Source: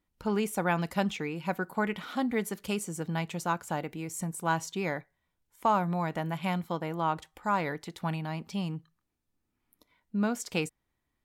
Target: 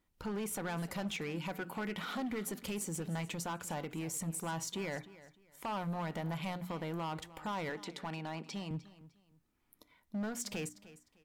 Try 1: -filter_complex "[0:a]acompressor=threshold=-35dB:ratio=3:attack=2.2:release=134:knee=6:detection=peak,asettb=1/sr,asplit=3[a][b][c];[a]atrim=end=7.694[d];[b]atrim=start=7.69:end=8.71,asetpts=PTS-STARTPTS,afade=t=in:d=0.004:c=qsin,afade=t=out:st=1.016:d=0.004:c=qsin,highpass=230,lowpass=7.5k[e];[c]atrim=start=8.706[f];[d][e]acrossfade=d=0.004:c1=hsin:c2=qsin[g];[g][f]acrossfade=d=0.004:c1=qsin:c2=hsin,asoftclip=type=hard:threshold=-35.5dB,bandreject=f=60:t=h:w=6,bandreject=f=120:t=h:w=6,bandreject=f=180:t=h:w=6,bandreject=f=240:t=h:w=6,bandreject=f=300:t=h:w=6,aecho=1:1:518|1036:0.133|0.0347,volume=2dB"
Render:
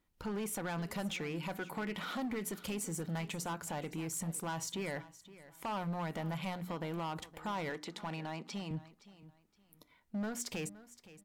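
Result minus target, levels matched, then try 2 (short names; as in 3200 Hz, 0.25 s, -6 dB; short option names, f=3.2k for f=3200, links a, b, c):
echo 0.215 s late
-filter_complex "[0:a]acompressor=threshold=-35dB:ratio=3:attack=2.2:release=134:knee=6:detection=peak,asettb=1/sr,asplit=3[a][b][c];[a]atrim=end=7.694[d];[b]atrim=start=7.69:end=8.71,asetpts=PTS-STARTPTS,afade=t=in:d=0.004:c=qsin,afade=t=out:st=1.016:d=0.004:c=qsin,highpass=230,lowpass=7.5k[e];[c]atrim=start=8.706[f];[d][e]acrossfade=d=0.004:c1=hsin:c2=qsin[g];[g][f]acrossfade=d=0.004:c1=qsin:c2=hsin,asoftclip=type=hard:threshold=-35.5dB,bandreject=f=60:t=h:w=6,bandreject=f=120:t=h:w=6,bandreject=f=180:t=h:w=6,bandreject=f=240:t=h:w=6,bandreject=f=300:t=h:w=6,aecho=1:1:303|606:0.133|0.0347,volume=2dB"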